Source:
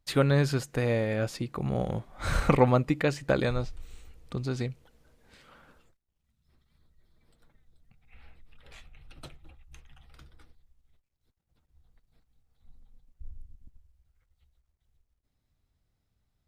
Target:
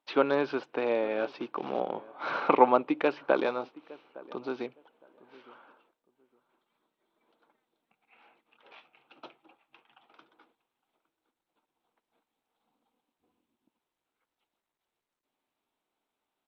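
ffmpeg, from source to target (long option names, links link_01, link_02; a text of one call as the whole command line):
ffmpeg -i in.wav -filter_complex "[0:a]asettb=1/sr,asplit=3[link_01][link_02][link_03];[link_01]atrim=end=1.134[link_04];[link_02]atrim=start=1.13:end=1.8,asetpts=PTS-STARTPTS,afade=type=in:duration=0.004:curve=qsin,afade=type=out:start_time=0.666:duration=0.004:curve=qsin,acrusher=bits=4:mode=log:mix=0:aa=0.000001[link_05];[link_03]atrim=start=1.796[link_06];[link_04][link_05]acrossfade=duration=0.004:curve1=hsin:curve2=qsin[link_07];[link_07][link_06]acrossfade=duration=0.004:curve1=qsin:curve2=hsin,highpass=frequency=300:width=0.5412,highpass=frequency=300:width=1.3066,equalizer=frequency=510:width_type=q:width=4:gain=-3,equalizer=frequency=930:width_type=q:width=4:gain=6,equalizer=frequency=1900:width_type=q:width=4:gain=-10,lowpass=frequency=3100:width=0.5412,lowpass=frequency=3100:width=1.3066,asplit=2[link_08][link_09];[link_09]adelay=861,lowpass=frequency=1200:poles=1,volume=-20dB,asplit=2[link_10][link_11];[link_11]adelay=861,lowpass=frequency=1200:poles=1,volume=0.22[link_12];[link_10][link_12]amix=inputs=2:normalize=0[link_13];[link_08][link_13]amix=inputs=2:normalize=0,volume=2.5dB" -ar 32000 -c:a sbc -b:a 64k out.sbc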